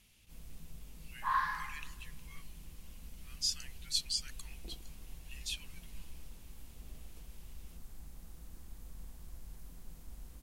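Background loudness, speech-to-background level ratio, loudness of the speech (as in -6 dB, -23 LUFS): -46.5 LUFS, 7.5 dB, -39.0 LUFS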